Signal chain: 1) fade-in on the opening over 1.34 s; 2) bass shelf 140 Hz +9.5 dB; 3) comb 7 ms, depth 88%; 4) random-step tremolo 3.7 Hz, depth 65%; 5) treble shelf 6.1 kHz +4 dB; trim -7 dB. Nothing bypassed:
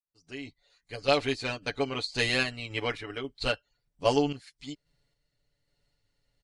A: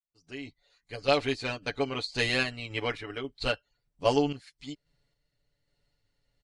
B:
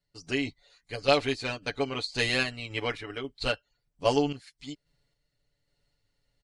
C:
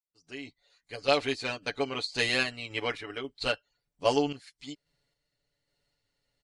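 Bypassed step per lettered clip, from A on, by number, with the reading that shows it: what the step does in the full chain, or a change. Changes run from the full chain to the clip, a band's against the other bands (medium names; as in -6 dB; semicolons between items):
5, 8 kHz band -2.0 dB; 1, momentary loudness spread change -2 LU; 2, 125 Hz band -5.0 dB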